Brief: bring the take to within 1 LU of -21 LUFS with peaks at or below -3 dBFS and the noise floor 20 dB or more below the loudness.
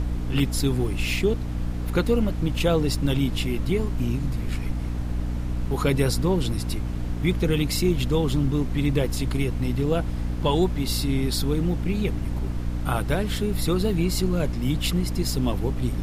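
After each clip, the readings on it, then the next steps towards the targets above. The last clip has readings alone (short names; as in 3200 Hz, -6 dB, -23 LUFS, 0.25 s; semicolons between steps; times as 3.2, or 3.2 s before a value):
hum 60 Hz; harmonics up to 300 Hz; hum level -26 dBFS; noise floor -29 dBFS; noise floor target -45 dBFS; loudness -25.0 LUFS; peak -8.5 dBFS; loudness target -21.0 LUFS
-> de-hum 60 Hz, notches 5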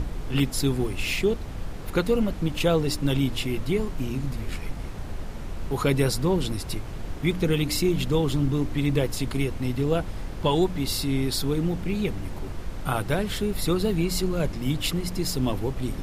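hum none; noise floor -35 dBFS; noise floor target -47 dBFS
-> noise print and reduce 12 dB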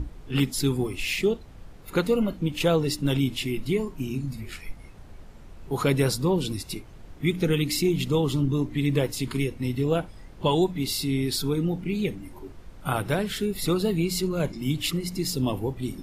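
noise floor -46 dBFS; noise floor target -47 dBFS
-> noise print and reduce 6 dB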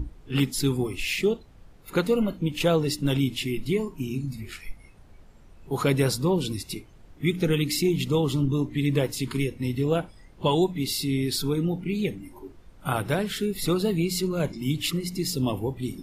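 noise floor -51 dBFS; loudness -26.5 LUFS; peak -10.0 dBFS; loudness target -21.0 LUFS
-> gain +5.5 dB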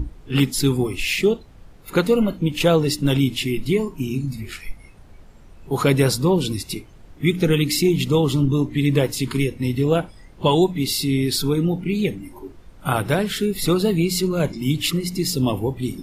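loudness -21.0 LUFS; peak -4.5 dBFS; noise floor -45 dBFS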